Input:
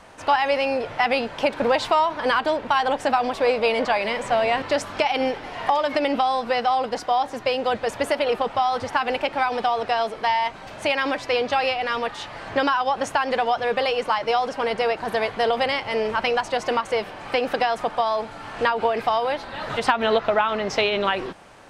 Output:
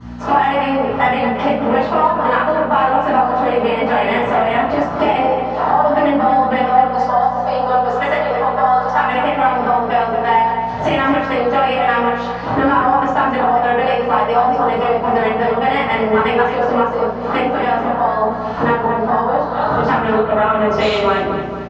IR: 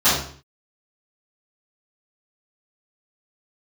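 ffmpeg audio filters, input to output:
-filter_complex "[0:a]lowpass=f=6k:w=0.5412,lowpass=f=6k:w=1.3066,afwtdn=0.0447,asettb=1/sr,asplit=3[a][b][c];[a]atrim=end=6.854[d];[b]atrim=start=6.85:end=9.12,asetpts=PTS-STARTPTS,afade=t=in:d=0.004:c=qsin,afade=t=out:st=2.266:d=0.004:c=qsin,highpass=680[e];[c]atrim=start=9.116[f];[d][e]acrossfade=d=0.004:c1=hsin:c2=qsin[g];[g][f]acrossfade=d=0.004:c1=qsin:c2=hsin,acompressor=threshold=-36dB:ratio=6,aeval=exprs='val(0)+0.00447*(sin(2*PI*60*n/s)+sin(2*PI*2*60*n/s)/2+sin(2*PI*3*60*n/s)/3+sin(2*PI*4*60*n/s)/4+sin(2*PI*5*60*n/s)/5)':c=same,asplit=2[h][i];[i]adelay=227,lowpass=f=2.8k:p=1,volume=-7dB,asplit=2[j][k];[k]adelay=227,lowpass=f=2.8k:p=1,volume=0.52,asplit=2[l][m];[m]adelay=227,lowpass=f=2.8k:p=1,volume=0.52,asplit=2[n][o];[o]adelay=227,lowpass=f=2.8k:p=1,volume=0.52,asplit=2[p][q];[q]adelay=227,lowpass=f=2.8k:p=1,volume=0.52,asplit=2[r][s];[s]adelay=227,lowpass=f=2.8k:p=1,volume=0.52[t];[h][j][l][n][p][r][t]amix=inputs=7:normalize=0[u];[1:a]atrim=start_sample=2205,asetrate=48510,aresample=44100[v];[u][v]afir=irnorm=-1:irlink=0,volume=1.5dB"

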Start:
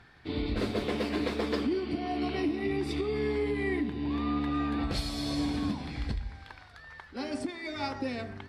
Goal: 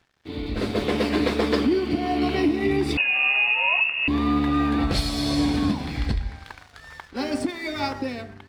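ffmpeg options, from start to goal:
-filter_complex "[0:a]aeval=exprs='sgn(val(0))*max(abs(val(0))-0.00178,0)':c=same,asettb=1/sr,asplit=3[a][b][c];[a]atrim=end=2.974[d];[b]atrim=start=2.97:end=4.08,asetpts=PTS-STARTPTS,afade=t=in:d=0.004:c=qsin,afade=t=out:st=1.106:d=0.004:c=qsin,lowpass=f=2.5k:t=q:w=0.5098,lowpass=f=2.5k:t=q:w=0.6013,lowpass=f=2.5k:t=q:w=0.9,lowpass=f=2.5k:t=q:w=2.563,afreqshift=-2900[e];[c]atrim=start=4.076[f];[d][e]acrossfade=d=0.004:c1=hsin:c2=qsin[g];[g][f]acrossfade=d=0.004:c1=qsin:c2=hsin,dynaudnorm=f=150:g=9:m=9dB"

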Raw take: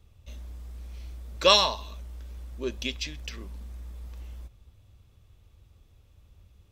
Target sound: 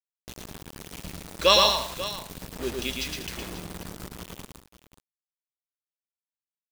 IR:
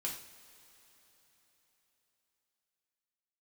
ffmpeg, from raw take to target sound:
-filter_complex "[0:a]asettb=1/sr,asplit=3[a][b][c];[a]atrim=end=1.764[d];[b]atrim=start=1.76:end=2.43,asetpts=PTS-STARTPTS,afade=t=in:d=0.004:c=qsin,afade=t=out:st=0.666:d=0.004:c=qsin,highshelf=f=4.3k:g=7[e];[c]atrim=start=2.426[f];[d][e]acrossfade=d=0.004:c1=hsin:c2=qsin[g];[g][f]acrossfade=d=0.004:c1=qsin:c2=hsin,acrusher=bits=5:mix=0:aa=0.000001,aecho=1:1:112|190|538:0.668|0.2|0.188"

